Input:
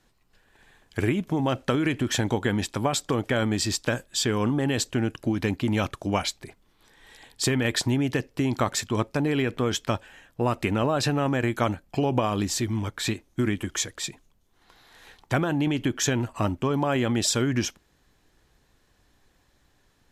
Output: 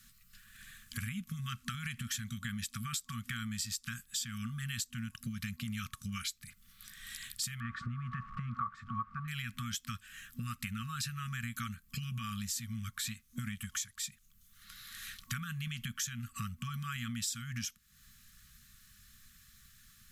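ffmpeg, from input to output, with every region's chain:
-filter_complex "[0:a]asettb=1/sr,asplit=3[a][b][c];[a]atrim=end=7.604[d];[b]atrim=start=7.6:end=9.28,asetpts=PTS-STARTPTS,afade=t=in:d=0.004:c=qsin,afade=t=out:st=1.676:d=0.004:c=qsin,aeval=exprs='val(0)+0.5*0.0178*sgn(val(0))':c=same,lowpass=f=1.1k:t=q:w=9.6[e];[c]atrim=start=9.276[f];[d][e]acrossfade=d=0.004:c1=hsin:c2=qsin[g];[g][f]acrossfade=d=0.004:c1=qsin:c2=hsin,aemphasis=mode=production:type=50fm,afftfilt=real='re*(1-between(b*sr/4096,240,1100))':imag='im*(1-between(b*sr/4096,240,1100))':win_size=4096:overlap=0.75,acompressor=threshold=-42dB:ratio=4,volume=2.5dB"

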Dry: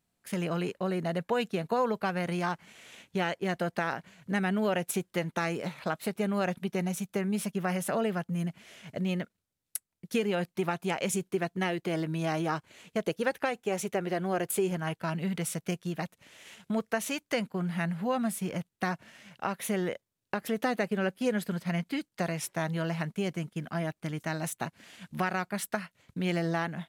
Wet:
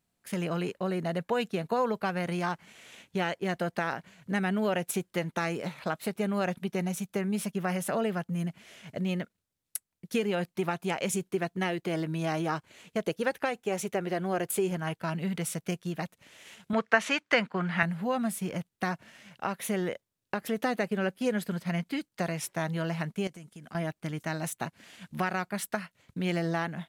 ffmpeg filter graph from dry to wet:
-filter_complex "[0:a]asettb=1/sr,asplit=3[a][b][c];[a]atrim=end=16.734[d];[b]atrim=start=16.73:end=17.83,asetpts=PTS-STARTPTS,afade=t=in:d=0.004:c=qsin,afade=t=out:st=1.096:d=0.004:c=qsin,highpass=110,lowpass=6.2k,equalizer=f=1.6k:t=o:w=2.2:g=11[e];[c]atrim=start=17.826[f];[d][e]acrossfade=d=0.004:c1=hsin:c2=qsin[g];[g][f]acrossfade=d=0.004:c1=qsin:c2=hsin,asettb=1/sr,asplit=3[h][i][j];[h]atrim=end=23.274[k];[i]atrim=start=23.27:end=23.75,asetpts=PTS-STARTPTS,afade=t=in:d=0.004:c=qsin,afade=t=out:st=0.476:d=0.004:c=qsin,equalizer=f=8.2k:w=0.83:g=9,acompressor=threshold=-45dB:ratio=4:attack=3.2:release=140:knee=1:detection=peak[l];[j]atrim=start=23.746[m];[k][l]acrossfade=d=0.004:c1=hsin:c2=qsin[n];[n][m]acrossfade=d=0.004:c1=qsin:c2=hsin"

